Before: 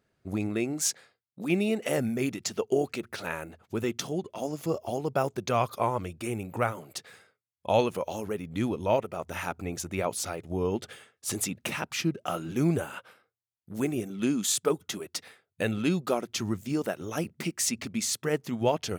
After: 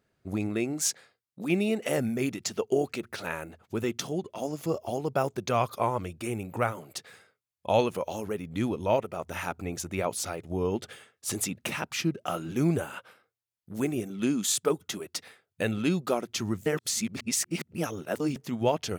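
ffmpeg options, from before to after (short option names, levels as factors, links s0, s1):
-filter_complex "[0:a]asplit=3[s0][s1][s2];[s0]atrim=end=16.662[s3];[s1]atrim=start=16.658:end=18.362,asetpts=PTS-STARTPTS,areverse[s4];[s2]atrim=start=18.358[s5];[s3][s4]acrossfade=d=0.004:c1=hsin:c2=hsin[s6];[s6][s5]acrossfade=d=0.004:c1=hsin:c2=hsin"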